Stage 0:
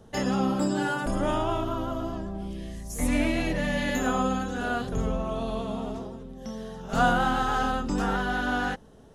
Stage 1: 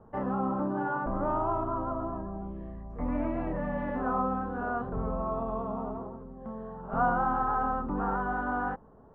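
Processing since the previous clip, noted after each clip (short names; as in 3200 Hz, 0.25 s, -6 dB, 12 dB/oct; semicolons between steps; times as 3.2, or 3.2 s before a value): in parallel at -1 dB: limiter -21.5 dBFS, peak gain reduction 11 dB; on the sum: ladder low-pass 1300 Hz, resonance 50%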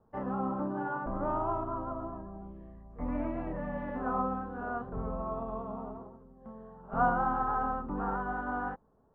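upward expander 1.5:1, over -48 dBFS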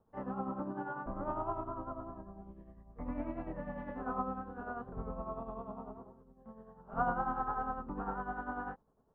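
tremolo 10 Hz, depth 57%; gain -3 dB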